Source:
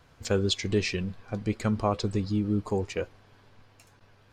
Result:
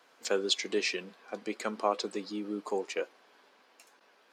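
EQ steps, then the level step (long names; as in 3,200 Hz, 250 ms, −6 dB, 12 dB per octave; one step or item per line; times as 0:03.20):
Bessel high-pass filter 410 Hz, order 6
0.0 dB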